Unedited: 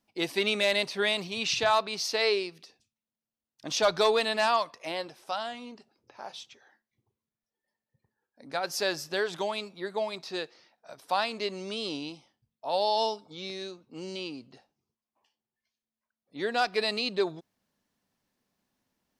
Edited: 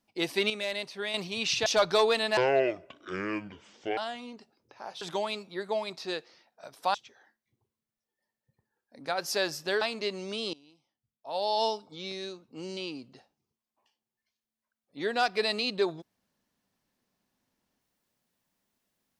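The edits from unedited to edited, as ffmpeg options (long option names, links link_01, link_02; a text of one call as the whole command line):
ffmpeg -i in.wav -filter_complex "[0:a]asplit=10[link_01][link_02][link_03][link_04][link_05][link_06][link_07][link_08][link_09][link_10];[link_01]atrim=end=0.502[link_11];[link_02]atrim=start=0.498:end=1.142,asetpts=PTS-STARTPTS,volume=-7.5dB[link_12];[link_03]atrim=start=1.138:end=1.662[link_13];[link_04]atrim=start=3.718:end=4.434[link_14];[link_05]atrim=start=4.43:end=5.36,asetpts=PTS-STARTPTS,asetrate=25578,aresample=44100,atrim=end_sample=70712,asetpts=PTS-STARTPTS[link_15];[link_06]atrim=start=5.356:end=6.402[link_16];[link_07]atrim=start=9.268:end=11.202[link_17];[link_08]atrim=start=6.398:end=9.272[link_18];[link_09]atrim=start=11.198:end=11.92,asetpts=PTS-STARTPTS,afade=type=out:start_time=0.718:duration=0.004:curve=hsin:silence=0.0749894[link_19];[link_10]atrim=start=11.92,asetpts=PTS-STARTPTS,afade=type=in:duration=1.11:curve=qua:silence=0.0749894[link_20];[link_11][link_12]acrossfade=duration=0.004:curve1=hsin:curve2=hsin[link_21];[link_21][link_13]acrossfade=duration=0.004:curve1=hsin:curve2=hsin[link_22];[link_22][link_14]acrossfade=duration=0.004:curve1=hsin:curve2=hsin[link_23];[link_23][link_15]acrossfade=duration=0.004:curve1=hsin:curve2=hsin[link_24];[link_24][link_16]acrossfade=duration=0.004:curve1=hsin:curve2=hsin[link_25];[link_25][link_17]acrossfade=duration=0.004:curve1=hsin:curve2=hsin[link_26];[link_26][link_18]acrossfade=duration=0.004:curve1=hsin:curve2=hsin[link_27];[link_19][link_20]concat=n=2:v=0:a=1[link_28];[link_27][link_28]acrossfade=duration=0.004:curve1=hsin:curve2=hsin" out.wav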